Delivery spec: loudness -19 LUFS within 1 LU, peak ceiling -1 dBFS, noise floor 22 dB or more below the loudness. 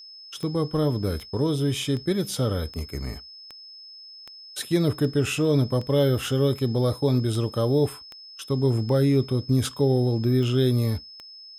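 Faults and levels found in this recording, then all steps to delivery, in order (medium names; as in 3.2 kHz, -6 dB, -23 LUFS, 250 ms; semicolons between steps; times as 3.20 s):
clicks found 15; steady tone 5.2 kHz; tone level -42 dBFS; loudness -24.0 LUFS; peak level -11.0 dBFS; loudness target -19.0 LUFS
-> de-click; band-stop 5.2 kHz, Q 30; trim +5 dB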